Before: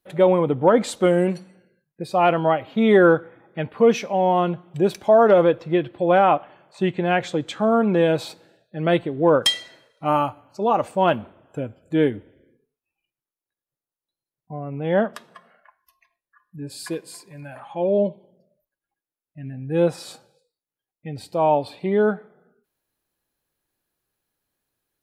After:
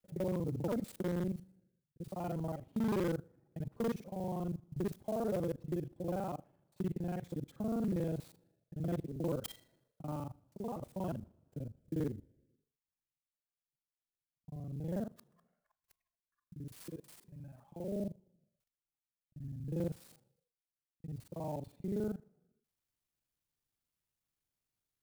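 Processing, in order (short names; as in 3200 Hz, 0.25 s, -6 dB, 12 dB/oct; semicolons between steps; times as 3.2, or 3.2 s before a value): local time reversal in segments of 40 ms; EQ curve 140 Hz 0 dB, 2600 Hz -30 dB, 7100 Hz -28 dB, 11000 Hz -14 dB; wavefolder -19.5 dBFS; pre-emphasis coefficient 0.8; clock jitter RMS 0.021 ms; gain +5.5 dB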